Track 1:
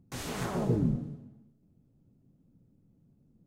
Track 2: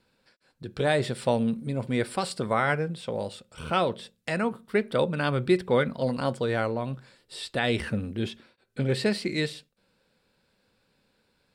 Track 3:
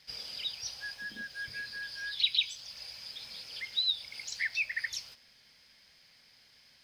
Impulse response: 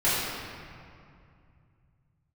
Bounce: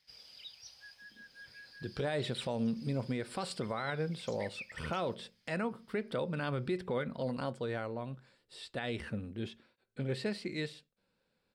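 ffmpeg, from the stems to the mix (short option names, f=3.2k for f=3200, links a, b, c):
-filter_complex "[1:a]highshelf=f=7.6k:g=-6.5,adelay=1200,volume=-3dB,afade=t=out:st=6.94:d=0.7:silence=0.473151[a];[2:a]volume=-13dB[b];[a][b]amix=inputs=2:normalize=0,alimiter=level_in=1.5dB:limit=-24dB:level=0:latency=1:release=160,volume=-1.5dB"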